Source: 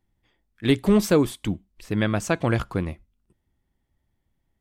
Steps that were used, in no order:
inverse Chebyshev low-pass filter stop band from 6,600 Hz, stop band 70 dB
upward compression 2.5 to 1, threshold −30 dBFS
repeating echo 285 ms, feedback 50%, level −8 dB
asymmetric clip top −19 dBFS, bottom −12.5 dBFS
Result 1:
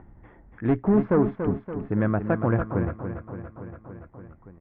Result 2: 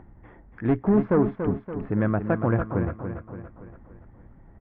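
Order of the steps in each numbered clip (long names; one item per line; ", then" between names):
asymmetric clip, then repeating echo, then upward compression, then inverse Chebyshev low-pass filter
asymmetric clip, then inverse Chebyshev low-pass filter, then upward compression, then repeating echo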